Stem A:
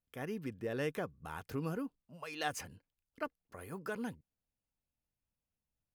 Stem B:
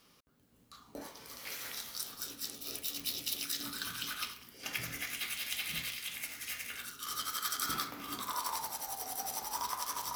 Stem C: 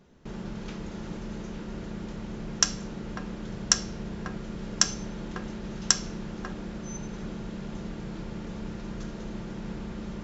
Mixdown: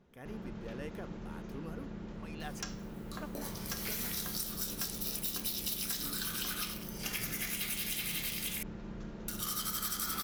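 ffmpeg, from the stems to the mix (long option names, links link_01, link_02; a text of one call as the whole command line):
ffmpeg -i stem1.wav -i stem2.wav -i stem3.wav -filter_complex "[0:a]volume=-8dB[link_01];[1:a]highshelf=frequency=6800:gain=9.5,asoftclip=type=tanh:threshold=-25.5dB,adelay=2400,volume=2dB,asplit=3[link_02][link_03][link_04];[link_02]atrim=end=8.63,asetpts=PTS-STARTPTS,afade=type=out:start_time=8.626:duration=0.004:curve=hsin[link_05];[link_03]atrim=start=8.63:end=9.28,asetpts=PTS-STARTPTS,volume=0[link_06];[link_04]atrim=start=9.28,asetpts=PTS-STARTPTS,afade=type=in:duration=0.004:curve=hsin[link_07];[link_05][link_06][link_07]concat=n=3:v=0:a=1[link_08];[2:a]asoftclip=type=hard:threshold=-18dB,highshelf=frequency=4800:gain=-11,volume=-7dB[link_09];[link_01][link_08][link_09]amix=inputs=3:normalize=0,acompressor=threshold=-33dB:ratio=6" out.wav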